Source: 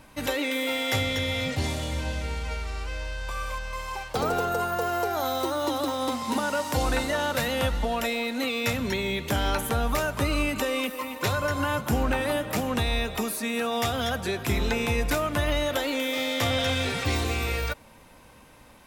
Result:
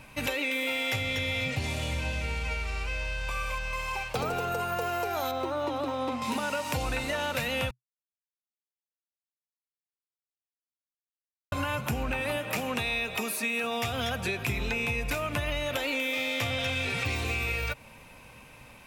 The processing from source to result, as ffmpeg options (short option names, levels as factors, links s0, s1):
-filter_complex "[0:a]asettb=1/sr,asplit=3[s0][s1][s2];[s0]atrim=end=5.314[s3];[s1]atrim=start=5.31:end=6.22,asetpts=PTS-STARTPTS,afade=t=in:d=0.004:c=qsin,afade=t=out:st=0.906:d=0.004:c=qsin,lowpass=f=1500:p=1[s4];[s2]atrim=start=6.216[s5];[s3][s4]acrossfade=d=0.004:c1=hsin:c2=qsin[s6];[s6][s5]acrossfade=d=0.004:c1=qsin:c2=hsin,asettb=1/sr,asplit=3[s7][s8][s9];[s7]atrim=end=12.384[s10];[s8]atrim=start=12.38:end=13.64,asetpts=PTS-STARTPTS,afade=t=in:d=0.004:c=qsin,afade=t=out:st=1.256:d=0.004:c=qsin,highpass=f=220:p=1[s11];[s9]atrim=start=13.636[s12];[s10][s11]acrossfade=d=0.004:c1=hsin:c2=qsin[s13];[s13][s12]acrossfade=d=0.004:c1=qsin:c2=hsin,asplit=3[s14][s15][s16];[s14]atrim=end=7.71,asetpts=PTS-STARTPTS,afade=t=out:st=7.706:d=0.004:c=hsin[s17];[s15]atrim=start=7.71:end=11.52,asetpts=PTS-STARTPTS,volume=0[s18];[s16]atrim=start=11.52,asetpts=PTS-STARTPTS,afade=t=in:d=0.004:c=hsin[s19];[s17][s18][s19]concat=n=3:v=0:a=1,equalizer=f=125:t=o:w=0.33:g=7,equalizer=f=315:t=o:w=0.33:g=-4,equalizer=f=2500:t=o:w=0.33:g=11,acompressor=threshold=0.0447:ratio=6"